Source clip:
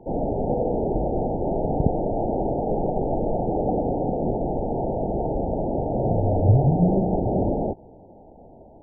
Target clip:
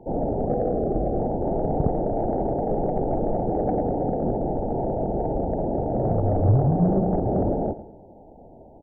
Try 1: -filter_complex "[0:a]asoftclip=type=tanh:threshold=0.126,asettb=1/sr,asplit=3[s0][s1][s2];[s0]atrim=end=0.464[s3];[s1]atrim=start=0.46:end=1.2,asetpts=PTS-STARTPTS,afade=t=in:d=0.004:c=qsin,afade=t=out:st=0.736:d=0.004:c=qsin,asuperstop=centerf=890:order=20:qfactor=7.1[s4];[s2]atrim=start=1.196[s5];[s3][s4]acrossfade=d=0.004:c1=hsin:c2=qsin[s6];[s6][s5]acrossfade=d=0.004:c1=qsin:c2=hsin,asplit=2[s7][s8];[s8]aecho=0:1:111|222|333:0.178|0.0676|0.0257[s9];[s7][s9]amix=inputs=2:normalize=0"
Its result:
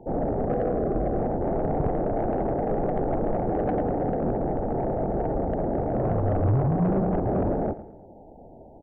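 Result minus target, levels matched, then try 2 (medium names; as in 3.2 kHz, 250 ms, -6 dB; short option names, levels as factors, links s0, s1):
saturation: distortion +10 dB
-filter_complex "[0:a]asoftclip=type=tanh:threshold=0.316,asettb=1/sr,asplit=3[s0][s1][s2];[s0]atrim=end=0.464[s3];[s1]atrim=start=0.46:end=1.2,asetpts=PTS-STARTPTS,afade=t=in:d=0.004:c=qsin,afade=t=out:st=0.736:d=0.004:c=qsin,asuperstop=centerf=890:order=20:qfactor=7.1[s4];[s2]atrim=start=1.196[s5];[s3][s4]acrossfade=d=0.004:c1=hsin:c2=qsin[s6];[s6][s5]acrossfade=d=0.004:c1=qsin:c2=hsin,asplit=2[s7][s8];[s8]aecho=0:1:111|222|333:0.178|0.0676|0.0257[s9];[s7][s9]amix=inputs=2:normalize=0"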